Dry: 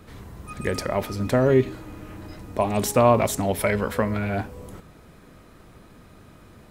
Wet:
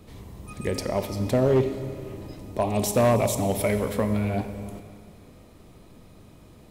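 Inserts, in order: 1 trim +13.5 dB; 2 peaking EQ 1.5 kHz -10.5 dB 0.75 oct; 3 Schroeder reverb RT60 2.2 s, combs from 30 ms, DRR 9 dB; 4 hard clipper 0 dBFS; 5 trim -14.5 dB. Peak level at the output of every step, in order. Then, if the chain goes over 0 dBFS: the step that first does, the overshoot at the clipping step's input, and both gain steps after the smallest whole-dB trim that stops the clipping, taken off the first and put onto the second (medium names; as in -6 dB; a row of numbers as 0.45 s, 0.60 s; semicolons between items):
+7.5 dBFS, +7.0 dBFS, +7.5 dBFS, 0.0 dBFS, -14.5 dBFS; step 1, 7.5 dB; step 1 +5.5 dB, step 5 -6.5 dB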